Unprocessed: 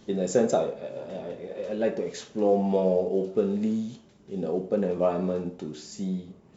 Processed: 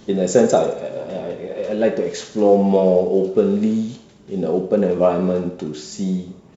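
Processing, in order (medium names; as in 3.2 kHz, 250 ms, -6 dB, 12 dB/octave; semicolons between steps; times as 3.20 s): on a send: thinning echo 72 ms, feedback 56%, level -12 dB; on the sum: resampled via 32 kHz; trim +8.5 dB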